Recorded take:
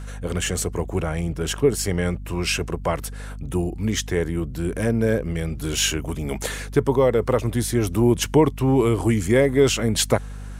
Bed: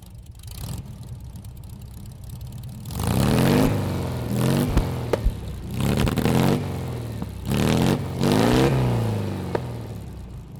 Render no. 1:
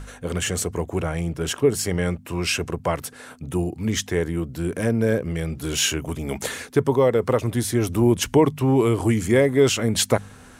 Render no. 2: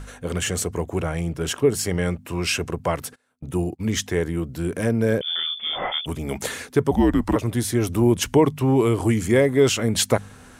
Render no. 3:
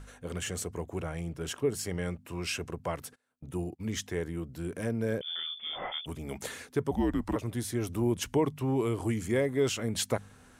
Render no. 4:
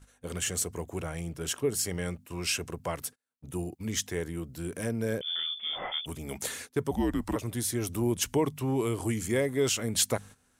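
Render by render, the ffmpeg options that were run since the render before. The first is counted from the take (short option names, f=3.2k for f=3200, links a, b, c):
-af "bandreject=f=50:t=h:w=4,bandreject=f=100:t=h:w=4,bandreject=f=150:t=h:w=4,bandreject=f=200:t=h:w=4"
-filter_complex "[0:a]asplit=3[a][b][c];[a]afade=t=out:st=3.14:d=0.02[d];[b]agate=range=-29dB:threshold=-35dB:ratio=16:release=100:detection=peak,afade=t=in:st=3.14:d=0.02,afade=t=out:st=3.96:d=0.02[e];[c]afade=t=in:st=3.96:d=0.02[f];[d][e][f]amix=inputs=3:normalize=0,asettb=1/sr,asplit=3[g][h][i];[g]atrim=end=5.214[j];[h]atrim=start=5.21:end=6.06,asetpts=PTS-STARTPTS,afade=t=in:d=0.004:c=qsin,afade=t=out:st=0.846:d=0.004:c=qsin,lowpass=f=3.1k:t=q:w=0.5098,lowpass=f=3.1k:t=q:w=0.6013,lowpass=f=3.1k:t=q:w=0.9,lowpass=f=3.1k:t=q:w=2.563,afreqshift=-3600[k];[i]atrim=start=6.056[l];[j][k]acrossfade=d=0.004:c1=hsin:c2=qsin[m];[m][l]acrossfade=d=0.004:c1=qsin:c2=hsin,asettb=1/sr,asplit=3[n][o][p];[n]atrim=end=6.914[q];[o]atrim=start=6.91:end=7.36,asetpts=PTS-STARTPTS,afade=t=in:d=0.004:c=qsin,afade=t=out:st=0.446:d=0.004:c=qsin,afreqshift=-190[r];[p]atrim=start=7.356[s];[q][r]acrossfade=d=0.004:c1=hsin:c2=qsin[t];[t][s]acrossfade=d=0.004:c1=qsin:c2=hsin"
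-af "volume=-10.5dB"
-af "agate=range=-14dB:threshold=-46dB:ratio=16:detection=peak,highshelf=f=4.1k:g=9.5"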